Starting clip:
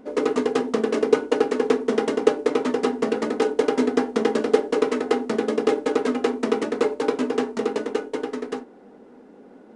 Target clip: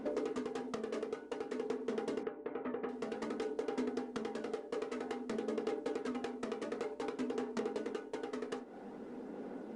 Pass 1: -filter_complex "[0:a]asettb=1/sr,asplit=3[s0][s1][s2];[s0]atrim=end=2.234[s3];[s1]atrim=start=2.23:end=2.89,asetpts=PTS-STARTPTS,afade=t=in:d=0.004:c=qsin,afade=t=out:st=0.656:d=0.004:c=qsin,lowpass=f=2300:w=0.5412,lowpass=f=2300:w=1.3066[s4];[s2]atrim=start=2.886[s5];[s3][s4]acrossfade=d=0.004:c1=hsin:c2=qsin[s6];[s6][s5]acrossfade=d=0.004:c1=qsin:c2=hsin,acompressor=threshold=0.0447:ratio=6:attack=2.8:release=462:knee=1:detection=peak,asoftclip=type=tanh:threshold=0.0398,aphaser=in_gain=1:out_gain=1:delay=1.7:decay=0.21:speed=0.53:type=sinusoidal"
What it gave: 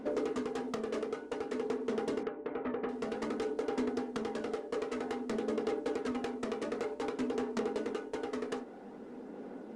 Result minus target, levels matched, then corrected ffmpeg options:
compression: peak gain reduction -5 dB
-filter_complex "[0:a]asettb=1/sr,asplit=3[s0][s1][s2];[s0]atrim=end=2.234[s3];[s1]atrim=start=2.23:end=2.89,asetpts=PTS-STARTPTS,afade=t=in:d=0.004:c=qsin,afade=t=out:st=0.656:d=0.004:c=qsin,lowpass=f=2300:w=0.5412,lowpass=f=2300:w=1.3066[s4];[s2]atrim=start=2.886[s5];[s3][s4]acrossfade=d=0.004:c1=hsin:c2=qsin[s6];[s6][s5]acrossfade=d=0.004:c1=qsin:c2=hsin,acompressor=threshold=0.0224:ratio=6:attack=2.8:release=462:knee=1:detection=peak,asoftclip=type=tanh:threshold=0.0398,aphaser=in_gain=1:out_gain=1:delay=1.7:decay=0.21:speed=0.53:type=sinusoidal"

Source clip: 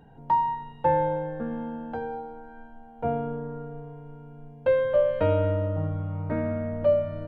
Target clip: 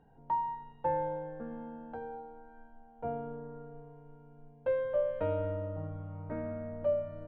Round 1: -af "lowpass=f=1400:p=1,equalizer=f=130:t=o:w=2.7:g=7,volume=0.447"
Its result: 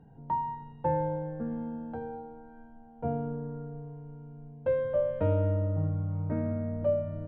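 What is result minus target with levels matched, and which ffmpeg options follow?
125 Hz band +7.0 dB
-af "lowpass=f=1400:p=1,equalizer=f=130:t=o:w=2.7:g=-5,volume=0.447"

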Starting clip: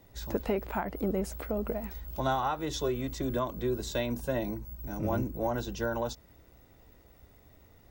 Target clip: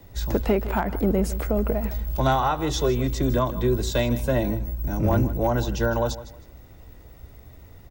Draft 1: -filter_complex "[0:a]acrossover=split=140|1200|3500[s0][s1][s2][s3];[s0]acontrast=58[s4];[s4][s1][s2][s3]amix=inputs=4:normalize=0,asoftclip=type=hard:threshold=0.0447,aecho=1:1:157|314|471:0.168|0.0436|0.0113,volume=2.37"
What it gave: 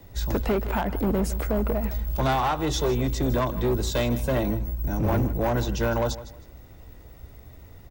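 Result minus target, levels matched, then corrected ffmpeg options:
hard clipper: distortion +16 dB
-filter_complex "[0:a]acrossover=split=140|1200|3500[s0][s1][s2][s3];[s0]acontrast=58[s4];[s4][s1][s2][s3]amix=inputs=4:normalize=0,asoftclip=type=hard:threshold=0.0944,aecho=1:1:157|314|471:0.168|0.0436|0.0113,volume=2.37"

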